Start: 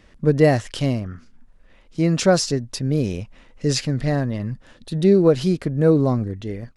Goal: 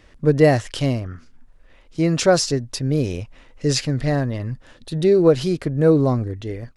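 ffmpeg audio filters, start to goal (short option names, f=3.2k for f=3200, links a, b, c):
-af "equalizer=f=200:w=4.7:g=-9.5,volume=1.5dB"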